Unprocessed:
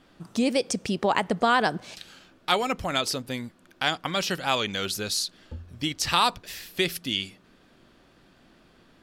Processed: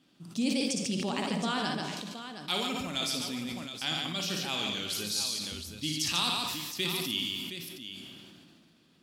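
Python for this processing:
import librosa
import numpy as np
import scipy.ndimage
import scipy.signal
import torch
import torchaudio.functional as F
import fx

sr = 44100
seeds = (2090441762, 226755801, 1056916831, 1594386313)

p1 = scipy.signal.sosfilt(scipy.signal.butter(2, 150.0, 'highpass', fs=sr, output='sos'), x)
p2 = fx.band_shelf(p1, sr, hz=890.0, db=-9.5, octaves=2.7)
p3 = p2 + fx.echo_multitap(p2, sr, ms=(58, 142, 718), db=(-7.5, -5.0, -10.0), dry=0)
p4 = fx.rev_plate(p3, sr, seeds[0], rt60_s=1.5, hf_ratio=0.8, predelay_ms=0, drr_db=8.5)
p5 = fx.sustainer(p4, sr, db_per_s=25.0)
y = p5 * 10.0 ** (-5.5 / 20.0)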